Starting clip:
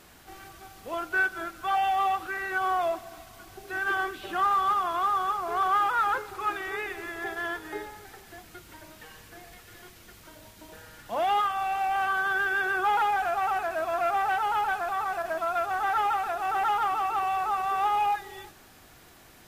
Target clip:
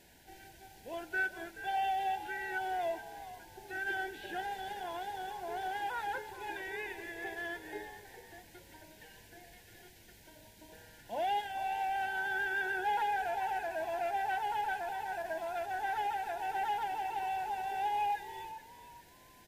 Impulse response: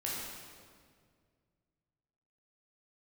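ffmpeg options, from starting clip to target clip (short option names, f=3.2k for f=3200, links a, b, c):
-filter_complex "[0:a]asuperstop=centerf=1200:order=8:qfactor=2.5,asplit=4[a][b][c][d];[b]adelay=428,afreqshift=65,volume=-13.5dB[e];[c]adelay=856,afreqshift=130,volume=-22.9dB[f];[d]adelay=1284,afreqshift=195,volume=-32.2dB[g];[a][e][f][g]amix=inputs=4:normalize=0,volume=-7dB"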